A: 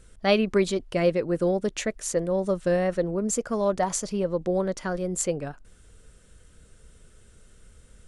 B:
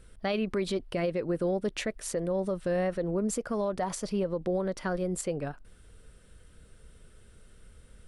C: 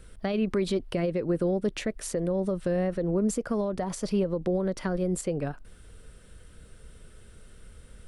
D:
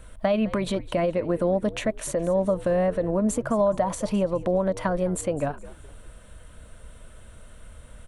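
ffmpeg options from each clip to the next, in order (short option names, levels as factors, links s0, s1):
-af "equalizer=f=6800:w=2.7:g=-9.5,alimiter=limit=0.0944:level=0:latency=1:release=86,volume=0.891"
-filter_complex "[0:a]acrossover=split=440[s0][s1];[s1]acompressor=threshold=0.0126:ratio=5[s2];[s0][s2]amix=inputs=2:normalize=0,volume=1.68"
-filter_complex "[0:a]equalizer=f=160:t=o:w=0.33:g=-6,equalizer=f=400:t=o:w=0.33:g=-10,equalizer=f=630:t=o:w=0.33:g=9,equalizer=f=1000:t=o:w=0.33:g=8,equalizer=f=5000:t=o:w=0.33:g=-10,asplit=4[s0][s1][s2][s3];[s1]adelay=209,afreqshift=-78,volume=0.126[s4];[s2]adelay=418,afreqshift=-156,volume=0.0442[s5];[s3]adelay=627,afreqshift=-234,volume=0.0155[s6];[s0][s4][s5][s6]amix=inputs=4:normalize=0,volume=1.58"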